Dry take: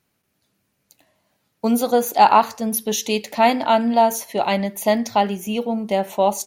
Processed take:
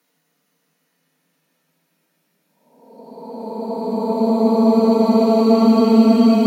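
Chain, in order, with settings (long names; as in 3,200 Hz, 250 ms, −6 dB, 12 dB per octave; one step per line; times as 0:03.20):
dynamic equaliser 280 Hz, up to +4 dB, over −32 dBFS, Q 1.8
extreme stretch with random phases 41×, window 0.10 s, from 0:01.53
Butterworth high-pass 150 Hz 96 dB per octave
on a send: convolution reverb RT60 1.0 s, pre-delay 3 ms, DRR 7 dB
on the sum: level +3 dB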